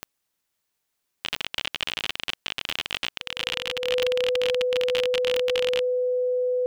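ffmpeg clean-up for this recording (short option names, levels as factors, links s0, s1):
-af "adeclick=t=4,bandreject=f=500:w=30"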